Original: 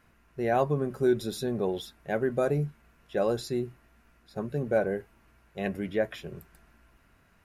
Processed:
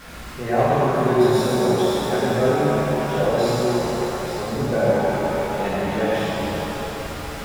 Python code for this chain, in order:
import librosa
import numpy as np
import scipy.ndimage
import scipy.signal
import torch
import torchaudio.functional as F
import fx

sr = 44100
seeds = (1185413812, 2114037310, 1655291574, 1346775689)

y = x + 0.5 * 10.0 ** (-36.5 / 20.0) * np.sign(x)
y = fx.high_shelf(y, sr, hz=10000.0, db=-6.5)
y = fx.rev_shimmer(y, sr, seeds[0], rt60_s=4.0, semitones=7, shimmer_db=-8, drr_db=-10.0)
y = y * 10.0 ** (-2.0 / 20.0)